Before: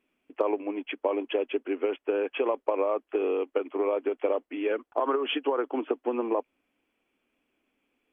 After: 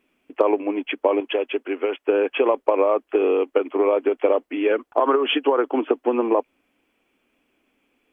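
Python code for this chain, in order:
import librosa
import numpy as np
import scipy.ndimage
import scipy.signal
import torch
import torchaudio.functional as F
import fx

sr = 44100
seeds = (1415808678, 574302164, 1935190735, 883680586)

y = fx.low_shelf(x, sr, hz=380.0, db=-8.5, at=(1.2, 2.08))
y = y * librosa.db_to_amplitude(8.0)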